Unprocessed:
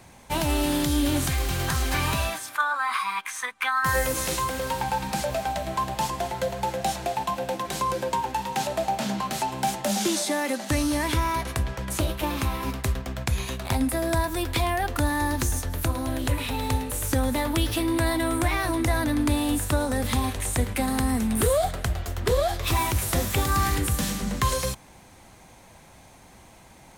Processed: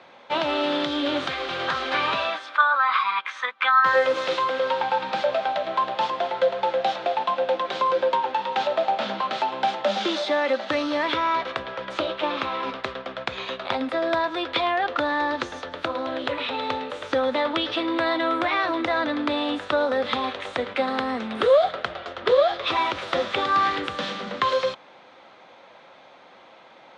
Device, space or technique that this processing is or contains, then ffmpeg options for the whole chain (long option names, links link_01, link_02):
phone earpiece: -af "highpass=360,equalizer=frequency=540:width_type=q:width=4:gain=7,equalizer=frequency=1300:width_type=q:width=4:gain=7,equalizer=frequency=3500:width_type=q:width=4:gain=5,lowpass=frequency=4000:width=0.5412,lowpass=frequency=4000:width=1.3066,volume=2dB"